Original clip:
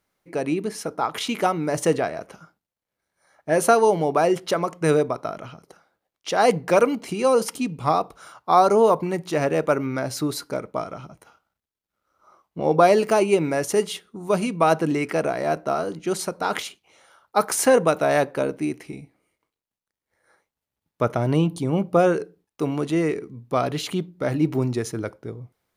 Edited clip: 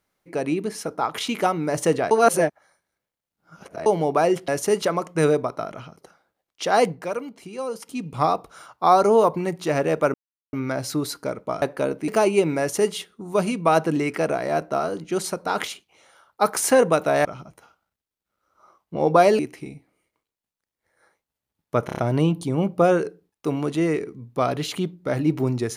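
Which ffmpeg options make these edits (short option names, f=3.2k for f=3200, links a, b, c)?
-filter_complex "[0:a]asplit=16[a][b][c][d][e][f][g][h][i][j][k][l][m][n][o][p];[a]atrim=end=2.112[q];[b]atrim=start=2.108:end=3.862,asetpts=PTS-STARTPTS,areverse[r];[c]atrim=start=3.858:end=4.482[s];[d]atrim=start=13.538:end=13.882[t];[e]atrim=start=4.478:end=6.72,asetpts=PTS-STARTPTS,afade=t=out:st=1.962:d=0.28:silence=0.281838[u];[f]atrim=start=6.72:end=7.51,asetpts=PTS-STARTPTS,volume=-11dB[v];[g]atrim=start=7.51:end=9.8,asetpts=PTS-STARTPTS,afade=t=in:d=0.28:silence=0.281838,afade=t=out:st=2.286:d=0.004:c=hsin,apad=pad_dur=0.39[w];[h]atrim=start=9.8:end=10.892,asetpts=PTS-STARTPTS,afade=t=in:d=0.004:c=hsin[x];[i]atrim=start=18.198:end=18.662[y];[j]atrim=start=13.028:end=18.202[z];[k]atrim=start=10.888:end=13.032[aa];[l]atrim=start=18.658:end=21.162[ab];[m]atrim=start=21.128:end=21.162[ac];[n]atrim=start=21.128:end=21.162[ad];[o]atrim=start=21.128:end=21.162[ae];[p]atrim=start=21.128[af];[q][r]acrossfade=d=0.004:c1=hsin:c2=hsin[ag];[ag][s]acrossfade=d=0.004:c1=hsin:c2=hsin[ah];[ah][t]acrossfade=d=0.004:c1=hsin:c2=hsin[ai];[u][v][w][x]concat=n=4:v=0:a=1[aj];[ai][aj]acrossfade=d=0.004:c1=hsin:c2=hsin[ak];[ak][y]acrossfade=d=0.004:c1=hsin:c2=hsin[al];[al][z]acrossfade=d=0.004:c1=hsin:c2=hsin[am];[am][aa]acrossfade=d=0.004:c1=hsin:c2=hsin[an];[an][ab]acrossfade=d=0.004:c1=hsin:c2=hsin[ao];[ao][ac]acrossfade=d=0.004:c1=hsin:c2=hsin[ap];[ap][ad]acrossfade=d=0.004:c1=hsin:c2=hsin[aq];[aq][ae]acrossfade=d=0.004:c1=hsin:c2=hsin[ar];[ar][af]acrossfade=d=0.004:c1=hsin:c2=hsin"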